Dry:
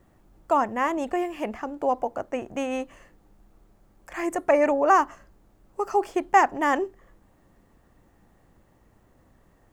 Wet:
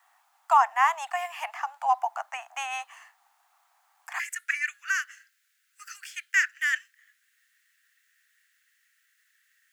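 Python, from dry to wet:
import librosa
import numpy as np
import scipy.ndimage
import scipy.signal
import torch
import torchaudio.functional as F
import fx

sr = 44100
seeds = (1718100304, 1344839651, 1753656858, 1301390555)

y = fx.steep_highpass(x, sr, hz=fx.steps((0.0, 740.0), (4.18, 1500.0)), slope=72)
y = y * 10.0 ** (4.5 / 20.0)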